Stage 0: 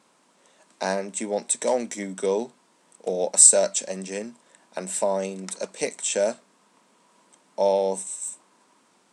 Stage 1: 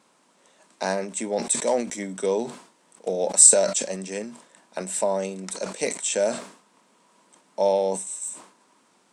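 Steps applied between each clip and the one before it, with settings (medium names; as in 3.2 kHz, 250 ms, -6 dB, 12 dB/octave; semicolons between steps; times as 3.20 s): decay stretcher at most 110 dB/s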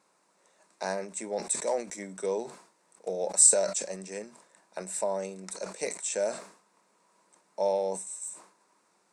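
graphic EQ with 31 bands 125 Hz -9 dB, 250 Hz -11 dB, 3.15 kHz -10 dB; trim -6 dB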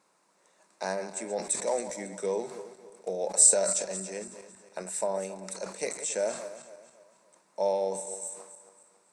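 backward echo that repeats 138 ms, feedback 60%, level -11.5 dB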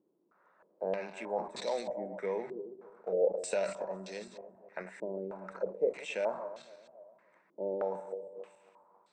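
step-sequenced low-pass 3.2 Hz 350–3900 Hz; trim -5 dB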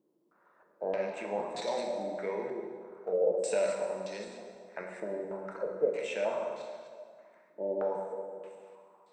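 plate-style reverb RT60 1.8 s, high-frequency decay 0.8×, DRR 2 dB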